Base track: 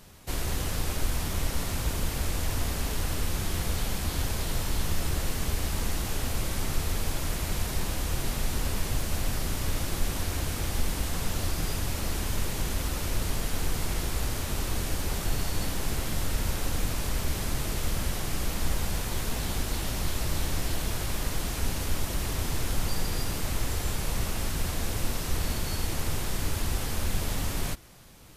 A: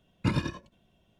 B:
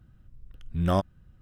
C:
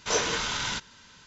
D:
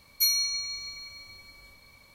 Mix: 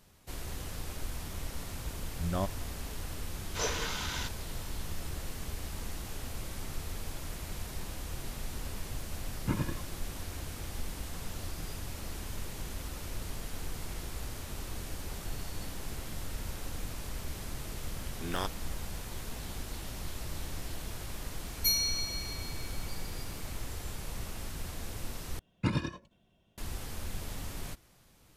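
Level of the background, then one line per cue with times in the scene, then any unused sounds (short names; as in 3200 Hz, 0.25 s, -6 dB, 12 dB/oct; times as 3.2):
base track -10 dB
1.45 add B -8.5 dB
3.49 add C -7.5 dB
9.23 add A -5 dB + LPF 2100 Hz
17.46 add B -11 dB + spectral limiter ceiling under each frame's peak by 23 dB
21.44 add D -4 dB
25.39 replace with A -3 dB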